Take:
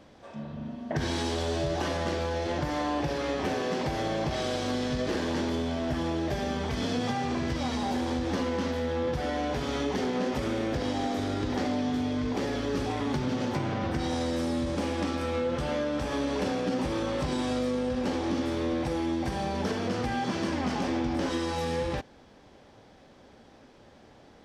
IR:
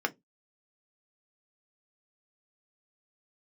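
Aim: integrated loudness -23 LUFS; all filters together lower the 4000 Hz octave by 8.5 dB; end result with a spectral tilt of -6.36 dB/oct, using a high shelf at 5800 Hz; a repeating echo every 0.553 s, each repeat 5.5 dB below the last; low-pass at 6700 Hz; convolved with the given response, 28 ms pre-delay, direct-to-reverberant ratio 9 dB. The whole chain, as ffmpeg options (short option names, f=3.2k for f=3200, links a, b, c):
-filter_complex "[0:a]lowpass=6.7k,equalizer=f=4k:t=o:g=-8.5,highshelf=f=5.8k:g=-6,aecho=1:1:553|1106|1659|2212|2765|3318|3871:0.531|0.281|0.149|0.079|0.0419|0.0222|0.0118,asplit=2[a][b];[1:a]atrim=start_sample=2205,adelay=28[c];[b][c]afir=irnorm=-1:irlink=0,volume=-17dB[d];[a][d]amix=inputs=2:normalize=0,volume=5.5dB"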